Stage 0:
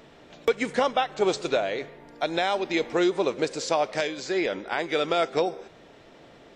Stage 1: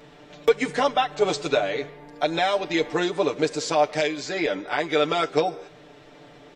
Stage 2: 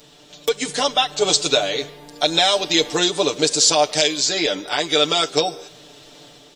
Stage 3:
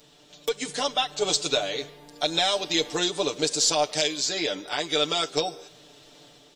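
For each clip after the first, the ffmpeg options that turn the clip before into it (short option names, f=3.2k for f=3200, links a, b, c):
-af "aecho=1:1:6.8:0.91"
-af "dynaudnorm=f=520:g=3:m=7dB,aexciter=amount=6.2:drive=2.1:freq=3k,volume=-3dB"
-af "aeval=exprs='0.891*(cos(1*acos(clip(val(0)/0.891,-1,1)))-cos(1*PI/2))+0.0178*(cos(4*acos(clip(val(0)/0.891,-1,1)))-cos(4*PI/2))':c=same,volume=-7dB"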